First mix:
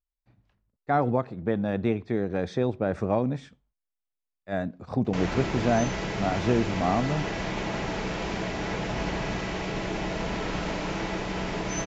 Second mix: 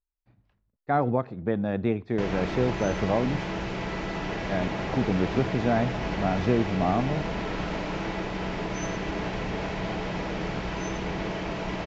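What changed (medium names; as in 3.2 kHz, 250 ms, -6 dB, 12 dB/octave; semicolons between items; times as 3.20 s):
background: entry -2.95 s; master: add distance through air 94 m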